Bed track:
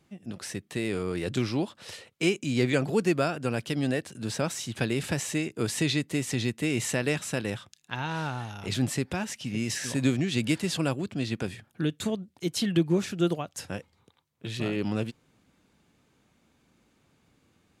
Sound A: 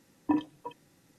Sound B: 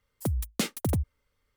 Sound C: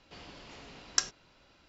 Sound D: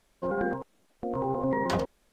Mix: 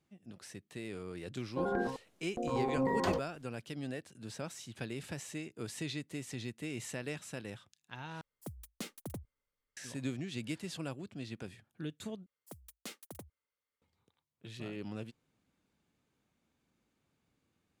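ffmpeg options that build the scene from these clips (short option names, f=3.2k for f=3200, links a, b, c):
-filter_complex "[2:a]asplit=2[a][b];[0:a]volume=-13dB[c];[a]equalizer=f=68:w=1.3:g=-10[d];[b]highpass=f=480:p=1[e];[c]asplit=3[f][g][h];[f]atrim=end=8.214[i];[d]atrim=end=1.56,asetpts=PTS-STARTPTS,volume=-14dB[j];[g]atrim=start=9.766:end=12.264[k];[e]atrim=end=1.56,asetpts=PTS-STARTPTS,volume=-15dB[l];[h]atrim=start=13.816[m];[4:a]atrim=end=2.12,asetpts=PTS-STARTPTS,volume=-4.5dB,afade=t=in:d=0.004:c=hsin,afade=t=out:st=2.116:d=0.004:c=hsin,adelay=1340[n];[i][j]acrossfade=d=0.004:c1=hsin:c2=hsin[o];[o][k]acrossfade=d=0.004:c1=hsin:c2=hsin[p];[p][l]acrossfade=d=0.004:c1=hsin:c2=hsin[q];[q][m]acrossfade=d=0.004:c1=hsin:c2=hsin[r];[r][n]amix=inputs=2:normalize=0"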